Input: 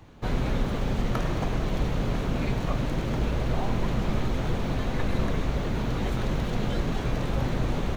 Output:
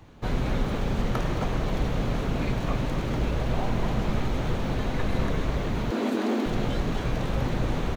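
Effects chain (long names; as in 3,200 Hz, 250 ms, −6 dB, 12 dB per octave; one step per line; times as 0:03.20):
0:05.91–0:06.46: frequency shifter +200 Hz
far-end echo of a speakerphone 260 ms, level −6 dB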